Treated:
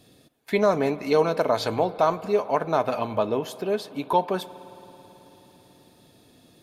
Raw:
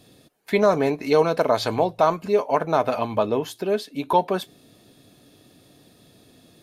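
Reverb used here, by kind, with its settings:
spring reverb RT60 4 s, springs 54 ms, chirp 20 ms, DRR 16 dB
level −2.5 dB

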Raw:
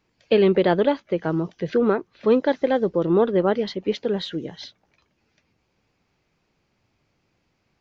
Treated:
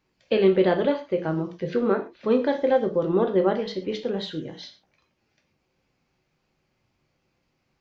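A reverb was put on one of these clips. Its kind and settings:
reverb whose tail is shaped and stops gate 150 ms falling, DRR 4 dB
level −4 dB

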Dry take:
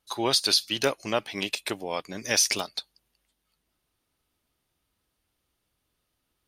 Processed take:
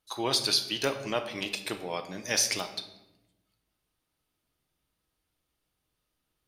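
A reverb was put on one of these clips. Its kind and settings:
rectangular room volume 370 cubic metres, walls mixed, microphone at 0.55 metres
level −4 dB

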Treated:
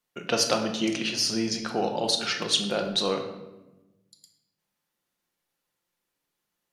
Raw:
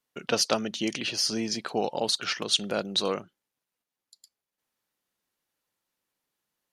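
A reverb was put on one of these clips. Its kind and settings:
rectangular room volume 480 cubic metres, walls mixed, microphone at 0.87 metres

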